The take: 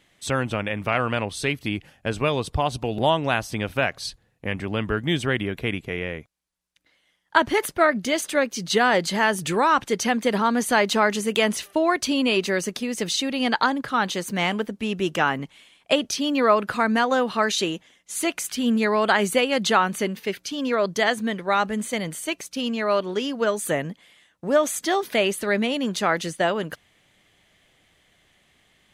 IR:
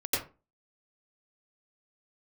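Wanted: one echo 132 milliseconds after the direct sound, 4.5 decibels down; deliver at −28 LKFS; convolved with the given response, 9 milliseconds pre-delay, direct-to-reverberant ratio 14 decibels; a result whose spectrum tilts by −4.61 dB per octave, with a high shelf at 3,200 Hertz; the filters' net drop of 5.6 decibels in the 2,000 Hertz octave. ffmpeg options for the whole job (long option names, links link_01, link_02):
-filter_complex "[0:a]equalizer=frequency=2000:width_type=o:gain=-6.5,highshelf=frequency=3200:gain=-3,aecho=1:1:132:0.596,asplit=2[link_01][link_02];[1:a]atrim=start_sample=2205,adelay=9[link_03];[link_02][link_03]afir=irnorm=-1:irlink=0,volume=-22.5dB[link_04];[link_01][link_04]amix=inputs=2:normalize=0,volume=-4.5dB"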